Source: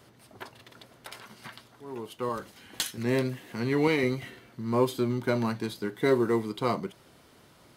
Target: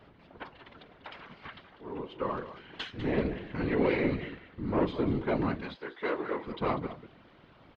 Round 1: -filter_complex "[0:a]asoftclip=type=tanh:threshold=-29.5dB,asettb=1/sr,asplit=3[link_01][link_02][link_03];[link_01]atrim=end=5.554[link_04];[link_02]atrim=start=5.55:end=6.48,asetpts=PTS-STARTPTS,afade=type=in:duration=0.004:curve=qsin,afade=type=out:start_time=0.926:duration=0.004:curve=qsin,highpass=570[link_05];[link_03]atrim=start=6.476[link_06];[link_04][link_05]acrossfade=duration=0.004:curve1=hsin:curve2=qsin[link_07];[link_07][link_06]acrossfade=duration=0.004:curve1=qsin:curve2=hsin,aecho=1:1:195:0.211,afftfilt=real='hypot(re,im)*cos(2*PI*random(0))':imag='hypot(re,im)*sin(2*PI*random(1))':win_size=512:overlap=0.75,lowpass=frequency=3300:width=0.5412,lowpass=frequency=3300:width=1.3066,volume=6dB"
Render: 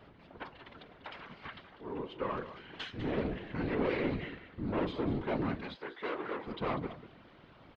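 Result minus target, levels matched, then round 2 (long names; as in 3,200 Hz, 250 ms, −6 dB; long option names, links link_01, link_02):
soft clipping: distortion +7 dB
-filter_complex "[0:a]asoftclip=type=tanh:threshold=-21dB,asettb=1/sr,asplit=3[link_01][link_02][link_03];[link_01]atrim=end=5.554[link_04];[link_02]atrim=start=5.55:end=6.48,asetpts=PTS-STARTPTS,afade=type=in:duration=0.004:curve=qsin,afade=type=out:start_time=0.926:duration=0.004:curve=qsin,highpass=570[link_05];[link_03]atrim=start=6.476[link_06];[link_04][link_05]acrossfade=duration=0.004:curve1=hsin:curve2=qsin[link_07];[link_07][link_06]acrossfade=duration=0.004:curve1=qsin:curve2=hsin,aecho=1:1:195:0.211,afftfilt=real='hypot(re,im)*cos(2*PI*random(0))':imag='hypot(re,im)*sin(2*PI*random(1))':win_size=512:overlap=0.75,lowpass=frequency=3300:width=0.5412,lowpass=frequency=3300:width=1.3066,volume=6dB"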